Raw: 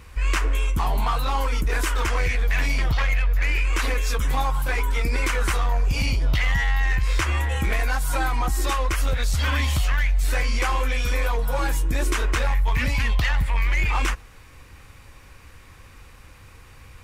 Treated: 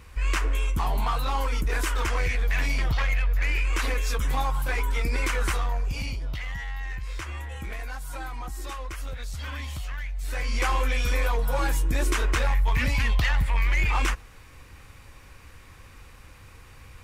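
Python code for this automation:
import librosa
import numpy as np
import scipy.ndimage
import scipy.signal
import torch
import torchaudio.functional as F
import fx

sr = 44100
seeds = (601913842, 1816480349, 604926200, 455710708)

y = fx.gain(x, sr, db=fx.line((5.48, -3.0), (6.43, -12.0), (10.14, -12.0), (10.65, -1.5)))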